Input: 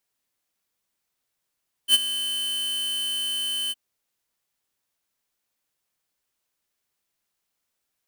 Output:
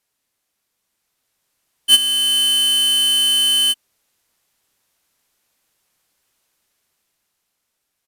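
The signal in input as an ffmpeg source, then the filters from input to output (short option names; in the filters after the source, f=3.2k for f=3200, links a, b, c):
-f lavfi -i "aevalsrc='0.2*(2*lt(mod(3050*t,1),0.5)-1)':d=1.863:s=44100,afade=t=in:d=0.063,afade=t=out:st=0.063:d=0.028:silence=0.211,afade=t=out:st=1.83:d=0.033"
-filter_complex "[0:a]asplit=2[a][b];[b]alimiter=limit=-24dB:level=0:latency=1:release=434,volume=0dB[c];[a][c]amix=inputs=2:normalize=0,aresample=32000,aresample=44100,dynaudnorm=f=300:g=9:m=6.5dB"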